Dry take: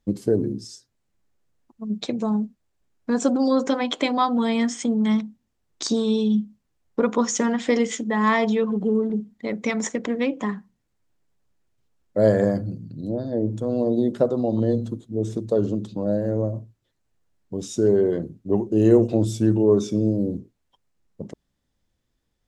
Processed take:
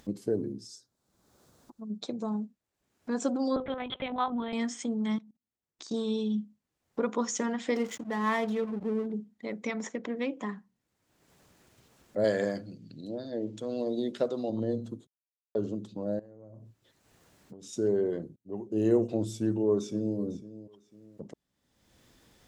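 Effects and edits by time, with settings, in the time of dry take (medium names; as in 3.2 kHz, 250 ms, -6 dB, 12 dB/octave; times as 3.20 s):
0.66–2.24 s: high-order bell 2.3 kHz -8 dB 1 oct
3.56–4.53 s: LPC vocoder at 8 kHz pitch kept
5.16–5.94 s: level held to a coarse grid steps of 22 dB
7.75–9.06 s: hysteresis with a dead band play -28.5 dBFS
9.67–10.17 s: distance through air 75 m
12.24–14.50 s: frequency weighting D
15.07–15.55 s: mute
16.19–17.73 s: compression 10:1, threshold -39 dBFS
18.36–18.79 s: fade in
19.30–20.17 s: echo throw 500 ms, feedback 10%, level -16 dB
whole clip: high-pass 150 Hz 6 dB/octave; upward compressor, threshold -32 dBFS; trim -8 dB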